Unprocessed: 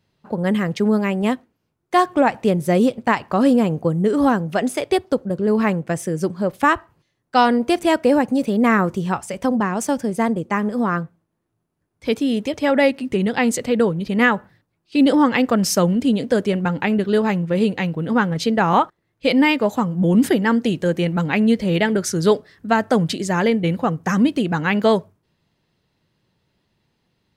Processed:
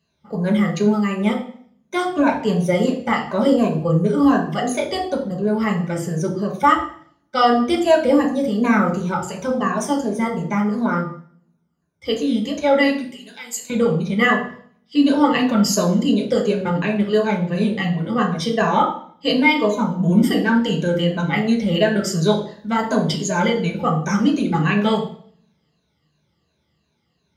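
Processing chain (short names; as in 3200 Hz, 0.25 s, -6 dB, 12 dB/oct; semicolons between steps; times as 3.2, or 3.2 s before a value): moving spectral ripple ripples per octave 1.5, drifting -2.8 Hz, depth 16 dB; 13.04–13.7 pre-emphasis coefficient 0.97; reverb RT60 0.55 s, pre-delay 3 ms, DRR -1 dB; gain -9.5 dB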